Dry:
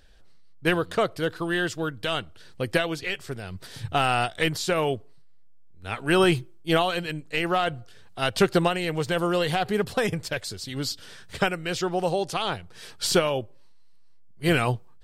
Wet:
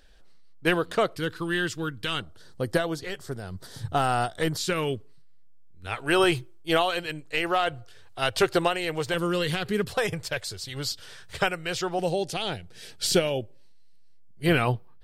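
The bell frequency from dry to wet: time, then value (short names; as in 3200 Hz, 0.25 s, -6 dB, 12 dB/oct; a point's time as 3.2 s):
bell -12.5 dB 0.67 oct
100 Hz
from 1.15 s 650 Hz
from 2.2 s 2500 Hz
from 4.57 s 710 Hz
from 5.87 s 200 Hz
from 9.14 s 750 Hz
from 9.88 s 240 Hz
from 11.99 s 1100 Hz
from 14.46 s 7100 Hz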